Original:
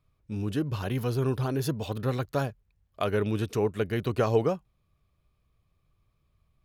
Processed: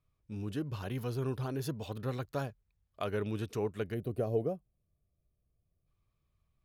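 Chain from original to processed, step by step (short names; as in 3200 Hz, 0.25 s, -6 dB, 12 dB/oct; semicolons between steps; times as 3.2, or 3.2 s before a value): spectral gain 3.94–5.87, 770–8400 Hz -13 dB; gain -7.5 dB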